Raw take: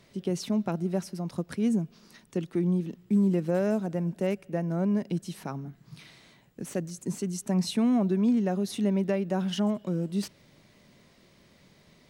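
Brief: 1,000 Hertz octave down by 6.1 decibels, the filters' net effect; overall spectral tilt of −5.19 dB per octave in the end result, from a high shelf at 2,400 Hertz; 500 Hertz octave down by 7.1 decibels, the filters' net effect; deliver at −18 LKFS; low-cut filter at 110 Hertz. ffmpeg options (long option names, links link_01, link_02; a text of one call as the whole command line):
ffmpeg -i in.wav -af "highpass=110,equalizer=frequency=500:width_type=o:gain=-9,equalizer=frequency=1000:width_type=o:gain=-5.5,highshelf=frequency=2400:gain=7,volume=12.5dB" out.wav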